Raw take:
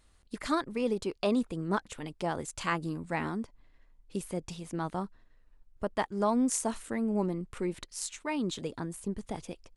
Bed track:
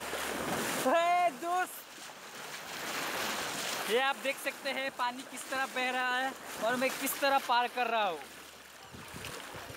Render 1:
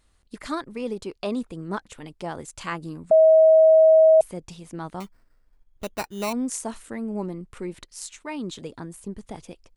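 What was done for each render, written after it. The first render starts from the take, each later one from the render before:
0:03.11–0:04.21: beep over 638 Hz −10.5 dBFS
0:05.00–0:06.33: sample-rate reduction 3,300 Hz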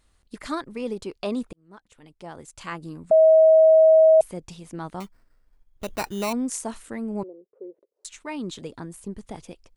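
0:01.53–0:03.24: fade in
0:05.88–0:06.47: envelope flattener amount 50%
0:07.23–0:08.05: flat-topped band-pass 470 Hz, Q 2.6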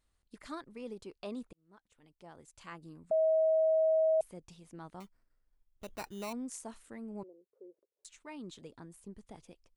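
level −13.5 dB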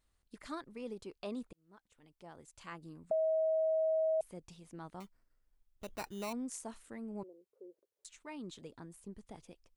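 downward compressor 3 to 1, threshold −31 dBFS, peak gain reduction 4 dB

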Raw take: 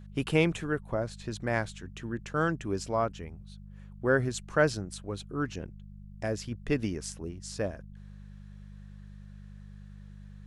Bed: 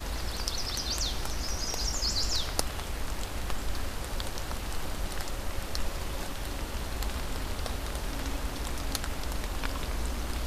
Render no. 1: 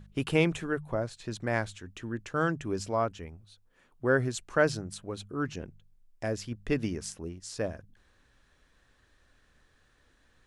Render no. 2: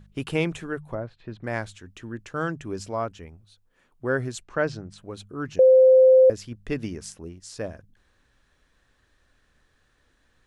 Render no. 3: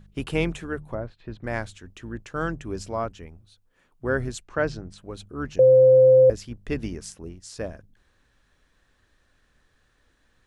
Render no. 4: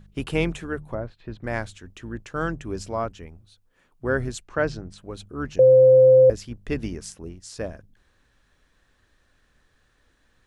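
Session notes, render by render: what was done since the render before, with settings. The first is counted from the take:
hum removal 50 Hz, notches 4
0:00.95–0:01.44: high-frequency loss of the air 370 metres; 0:04.43–0:04.98: high-frequency loss of the air 110 metres; 0:05.59–0:06.30: beep over 519 Hz −10.5 dBFS
sub-octave generator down 2 octaves, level −6 dB
level +1 dB

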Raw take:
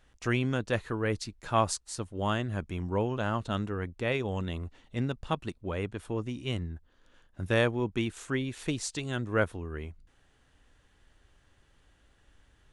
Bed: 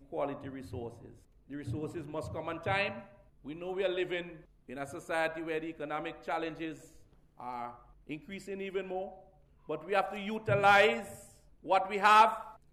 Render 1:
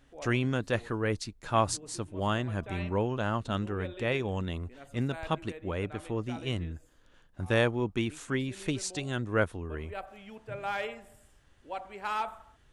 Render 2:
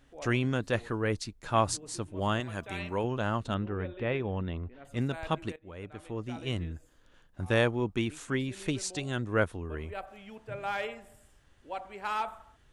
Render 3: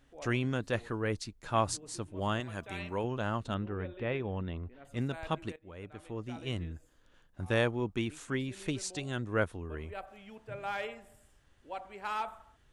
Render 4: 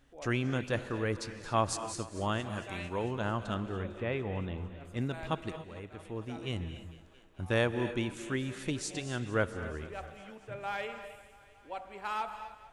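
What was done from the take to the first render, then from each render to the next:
mix in bed −10.5 dB
0:02.40–0:03.04: spectral tilt +2 dB per octave; 0:03.54–0:04.85: high-frequency loss of the air 310 metres; 0:05.56–0:06.57: fade in, from −18.5 dB
level −3 dB
feedback echo with a high-pass in the loop 225 ms, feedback 75%, high-pass 170 Hz, level −19 dB; reverb whose tail is shaped and stops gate 310 ms rising, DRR 10.5 dB

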